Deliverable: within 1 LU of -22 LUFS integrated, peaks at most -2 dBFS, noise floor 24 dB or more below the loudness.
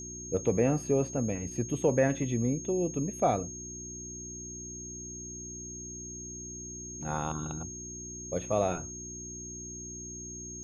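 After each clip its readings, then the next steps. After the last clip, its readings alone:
hum 60 Hz; harmonics up to 360 Hz; hum level -43 dBFS; steady tone 6500 Hz; tone level -41 dBFS; loudness -33.0 LUFS; peak -13.0 dBFS; loudness target -22.0 LUFS
-> de-hum 60 Hz, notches 6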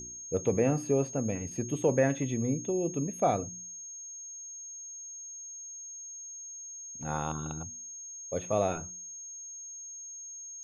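hum none; steady tone 6500 Hz; tone level -41 dBFS
-> notch 6500 Hz, Q 30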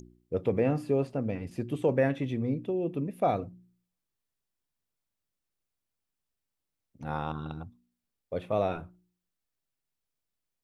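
steady tone none; loudness -31.0 LUFS; peak -13.5 dBFS; loudness target -22.0 LUFS
-> gain +9 dB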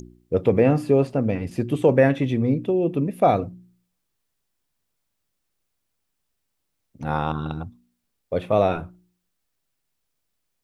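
loudness -22.0 LUFS; peak -4.5 dBFS; noise floor -77 dBFS

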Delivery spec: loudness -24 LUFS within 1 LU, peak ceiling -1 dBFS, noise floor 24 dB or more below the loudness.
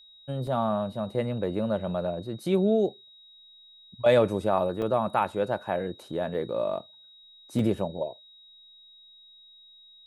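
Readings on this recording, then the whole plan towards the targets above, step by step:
dropouts 3; longest dropout 2.4 ms; steady tone 3800 Hz; tone level -51 dBFS; loudness -28.0 LUFS; peak -9.5 dBFS; loudness target -24.0 LUFS
-> interpolate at 0.47/4.82/7.59, 2.4 ms; notch 3800 Hz, Q 30; gain +4 dB

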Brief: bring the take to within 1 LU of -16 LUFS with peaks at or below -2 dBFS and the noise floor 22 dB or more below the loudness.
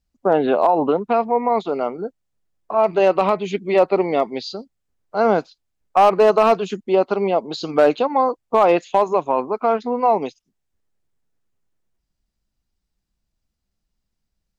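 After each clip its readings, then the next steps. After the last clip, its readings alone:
clipped 0.5%; flat tops at -6.5 dBFS; loudness -18.5 LUFS; peak -6.5 dBFS; loudness target -16.0 LUFS
-> clip repair -6.5 dBFS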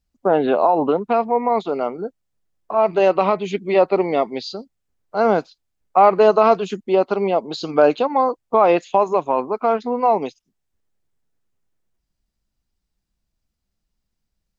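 clipped 0.0%; loudness -18.5 LUFS; peak -1.5 dBFS; loudness target -16.0 LUFS
-> gain +2.5 dB; limiter -2 dBFS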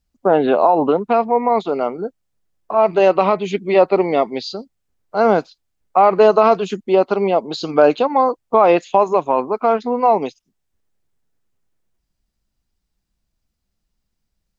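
loudness -16.5 LUFS; peak -2.0 dBFS; noise floor -75 dBFS

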